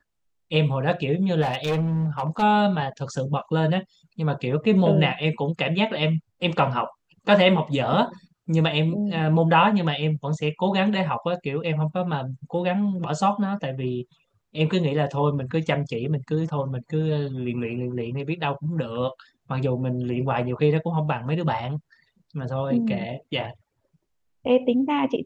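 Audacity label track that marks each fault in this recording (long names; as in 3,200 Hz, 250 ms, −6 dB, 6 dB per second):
1.410000	2.430000	clipping −19.5 dBFS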